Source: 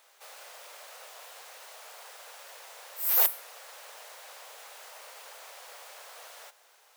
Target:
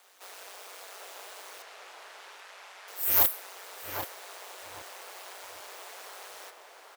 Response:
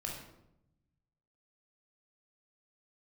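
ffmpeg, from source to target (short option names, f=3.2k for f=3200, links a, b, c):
-filter_complex "[0:a]aeval=exprs='clip(val(0),-1,0.126)':c=same,aeval=exprs='val(0)*sin(2*PI*95*n/s)':c=same,asettb=1/sr,asplit=3[a][b][c];[a]atrim=end=1.624[d];[b]atrim=start=1.62:end=2.88,asetpts=PTS-STARTPTS,afade=t=in:d=0.004:c=qsin,afade=t=out:st=1.256:d=0.004:c=qsin,bandpass=f=1.9k:t=q:w=0.61:csg=0[e];[c]atrim=start=2.876[f];[d][e]acrossfade=d=0.004:c1=hsin:c2=qsin[g];[g][f]acrossfade=d=0.004:c1=qsin:c2=hsin,asplit=2[h][i];[i]adelay=782,lowpass=f=2.4k:p=1,volume=-3.5dB,asplit=2[j][k];[k]adelay=782,lowpass=f=2.4k:p=1,volume=0.27,asplit=2[l][m];[m]adelay=782,lowpass=f=2.4k:p=1,volume=0.27,asplit=2[n][o];[o]adelay=782,lowpass=f=2.4k:p=1,volume=0.27[p];[j][l][n][p]amix=inputs=4:normalize=0[q];[h][q]amix=inputs=2:normalize=0,volume=4.5dB"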